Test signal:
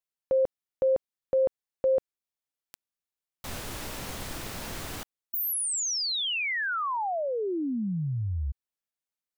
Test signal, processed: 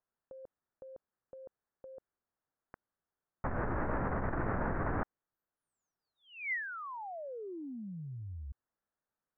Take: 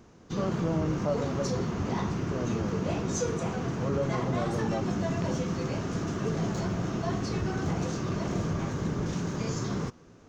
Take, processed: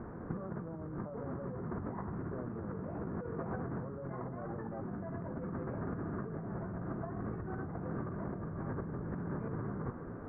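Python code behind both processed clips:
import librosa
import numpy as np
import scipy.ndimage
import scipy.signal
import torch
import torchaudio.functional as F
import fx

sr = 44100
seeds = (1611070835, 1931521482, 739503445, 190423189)

y = scipy.signal.sosfilt(scipy.signal.cheby2(6, 70, 3800.0, 'lowpass', fs=sr, output='sos'), x)
y = fx.over_compress(y, sr, threshold_db=-40.0, ratio=-1.0)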